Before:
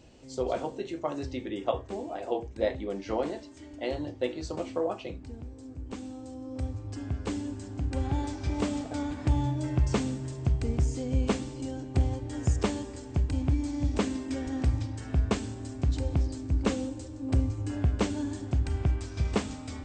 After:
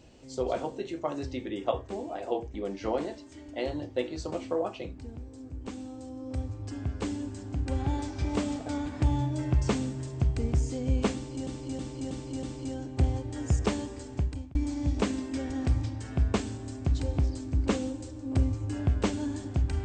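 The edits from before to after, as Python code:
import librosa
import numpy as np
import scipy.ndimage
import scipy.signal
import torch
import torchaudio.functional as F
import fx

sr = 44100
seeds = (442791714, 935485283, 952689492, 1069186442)

y = fx.edit(x, sr, fx.cut(start_s=2.54, length_s=0.25),
    fx.repeat(start_s=11.4, length_s=0.32, count=5),
    fx.fade_out_span(start_s=13.11, length_s=0.41), tone=tone)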